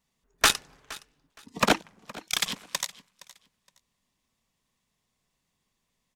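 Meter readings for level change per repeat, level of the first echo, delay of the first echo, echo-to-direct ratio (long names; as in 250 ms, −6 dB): −13.0 dB, −20.0 dB, 467 ms, −20.0 dB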